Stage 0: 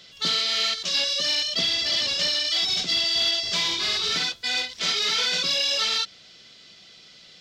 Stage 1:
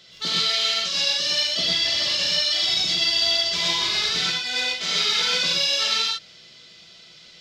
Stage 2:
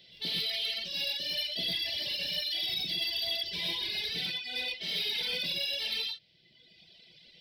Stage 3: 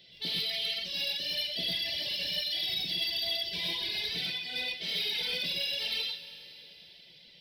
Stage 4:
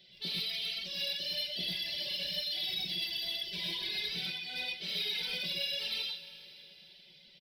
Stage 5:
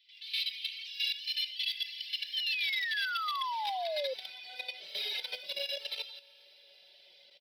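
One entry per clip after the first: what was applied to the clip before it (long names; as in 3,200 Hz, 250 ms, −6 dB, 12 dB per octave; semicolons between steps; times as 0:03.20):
reverb whose tail is shaped and stops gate 150 ms rising, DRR −2.5 dB; level −2.5 dB
reverb reduction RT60 1.3 s; soft clipping −20 dBFS, distortion −16 dB; phaser with its sweep stopped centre 3,000 Hz, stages 4; level −4.5 dB
dense smooth reverb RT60 3.9 s, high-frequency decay 0.95×, DRR 10 dB
comb filter 5.3 ms, depth 60%; level −4.5 dB
output level in coarse steps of 12 dB; high-pass filter sweep 2,400 Hz → 580 Hz, 0:02.01–0:04.68; sound drawn into the spectrogram fall, 0:02.33–0:04.14, 510–3,200 Hz −35 dBFS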